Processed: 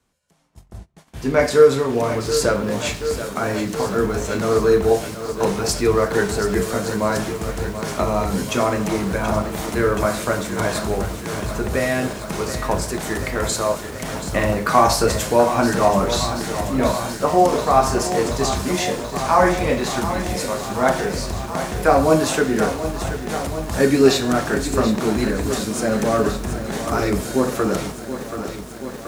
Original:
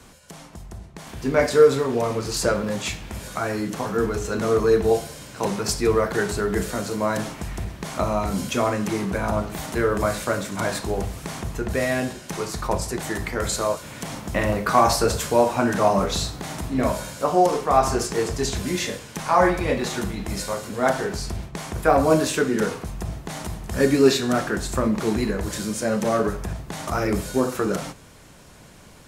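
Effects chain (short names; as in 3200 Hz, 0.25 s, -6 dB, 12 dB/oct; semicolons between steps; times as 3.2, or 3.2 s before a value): gate -36 dBFS, range -24 dB; lo-fi delay 0.73 s, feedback 80%, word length 7-bit, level -10.5 dB; gain +2.5 dB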